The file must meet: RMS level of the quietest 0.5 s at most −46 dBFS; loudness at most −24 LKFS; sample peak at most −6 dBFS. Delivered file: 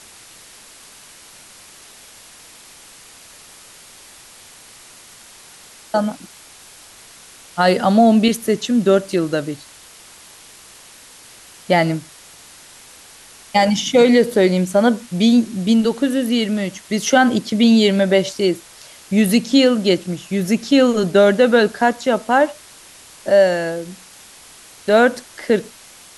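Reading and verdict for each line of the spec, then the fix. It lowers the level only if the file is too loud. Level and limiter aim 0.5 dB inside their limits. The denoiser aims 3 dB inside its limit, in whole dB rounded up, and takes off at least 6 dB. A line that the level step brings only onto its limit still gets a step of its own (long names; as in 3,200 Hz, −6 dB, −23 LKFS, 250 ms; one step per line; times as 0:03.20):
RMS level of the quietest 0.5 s −43 dBFS: out of spec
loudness −16.5 LKFS: out of spec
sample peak −2.5 dBFS: out of spec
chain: level −8 dB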